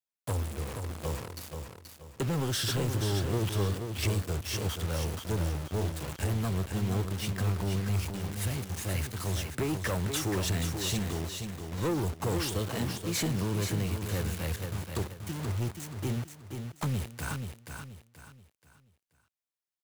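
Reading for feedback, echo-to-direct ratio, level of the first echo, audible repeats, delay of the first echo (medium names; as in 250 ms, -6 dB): 34%, -6.0 dB, -6.5 dB, 4, 480 ms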